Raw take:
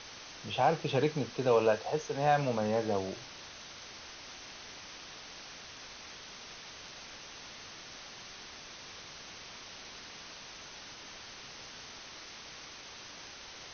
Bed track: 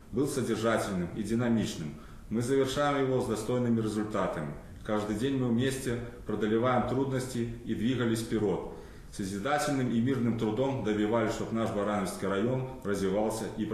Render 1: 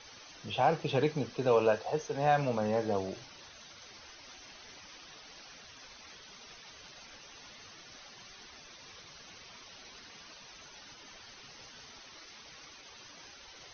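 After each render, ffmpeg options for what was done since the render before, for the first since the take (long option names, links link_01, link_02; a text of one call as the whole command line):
ffmpeg -i in.wav -af "afftdn=noise_reduction=12:noise_floor=-49" out.wav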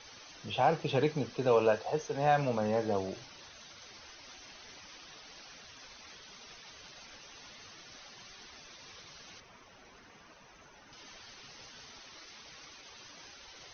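ffmpeg -i in.wav -filter_complex "[0:a]asettb=1/sr,asplit=3[link_01][link_02][link_03];[link_01]atrim=end=9.404[link_04];[link_02]atrim=start=9.4:end=10.93,asetpts=PTS-STARTPTS,afade=type=in:duration=0.004:curve=qsin,afade=type=out:start_time=1.526:duration=0.004:curve=qsin,equalizer=frequency=4400:width=0.83:gain=-12.5[link_05];[link_03]atrim=start=10.926[link_06];[link_04][link_05]acrossfade=duration=0.004:curve1=hsin:curve2=qsin[link_07];[link_07][link_06]acrossfade=duration=0.004:curve1=qsin:curve2=hsin" out.wav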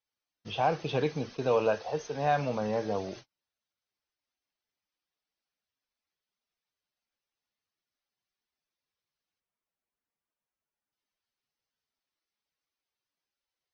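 ffmpeg -i in.wav -af "agate=range=-41dB:threshold=-44dB:ratio=16:detection=peak,bandreject=frequency=5800:width=27" out.wav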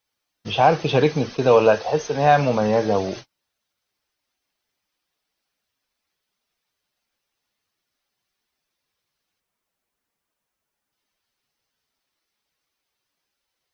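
ffmpeg -i in.wav -af "volume=11.5dB" out.wav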